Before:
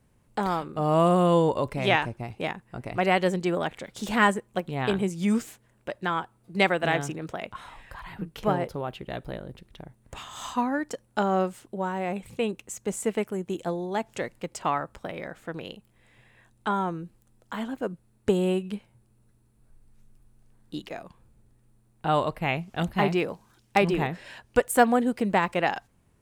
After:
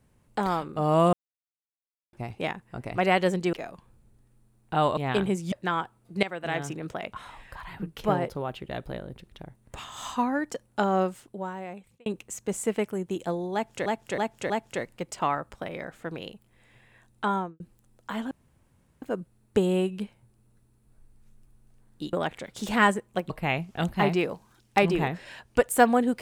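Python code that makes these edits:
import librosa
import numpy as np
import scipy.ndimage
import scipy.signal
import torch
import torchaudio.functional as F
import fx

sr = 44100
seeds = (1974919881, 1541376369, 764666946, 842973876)

y = fx.studio_fade_out(x, sr, start_s=16.76, length_s=0.27)
y = fx.edit(y, sr, fx.silence(start_s=1.13, length_s=1.0),
    fx.swap(start_s=3.53, length_s=1.17, other_s=20.85, other_length_s=1.44),
    fx.cut(start_s=5.25, length_s=0.66),
    fx.fade_in_from(start_s=6.62, length_s=0.61, floor_db=-16.5),
    fx.fade_out_span(start_s=11.4, length_s=1.05),
    fx.repeat(start_s=13.93, length_s=0.32, count=4),
    fx.insert_room_tone(at_s=17.74, length_s=0.71), tone=tone)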